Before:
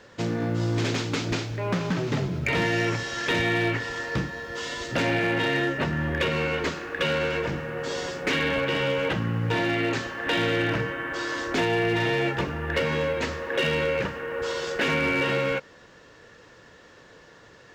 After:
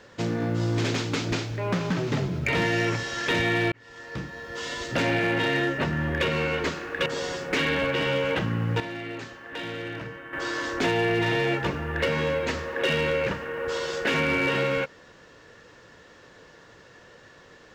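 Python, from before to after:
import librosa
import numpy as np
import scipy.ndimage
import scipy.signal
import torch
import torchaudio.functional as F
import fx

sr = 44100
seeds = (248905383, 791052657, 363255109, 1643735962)

y = fx.edit(x, sr, fx.fade_in_span(start_s=3.72, length_s=1.0),
    fx.cut(start_s=7.06, length_s=0.74),
    fx.clip_gain(start_s=9.54, length_s=1.53, db=-10.0), tone=tone)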